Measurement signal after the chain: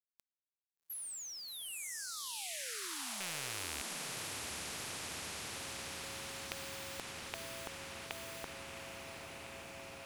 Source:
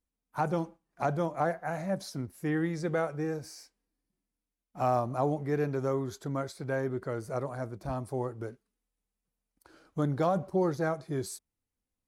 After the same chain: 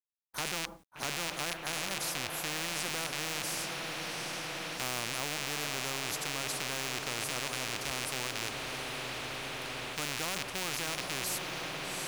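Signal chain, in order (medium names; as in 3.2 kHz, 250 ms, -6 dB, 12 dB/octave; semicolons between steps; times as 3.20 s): rattle on loud lows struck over -43 dBFS, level -24 dBFS; gate with hold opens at -55 dBFS; companded quantiser 8-bit; echo that smears into a reverb 780 ms, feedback 76%, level -11.5 dB; spectrum-flattening compressor 4:1; trim -2.5 dB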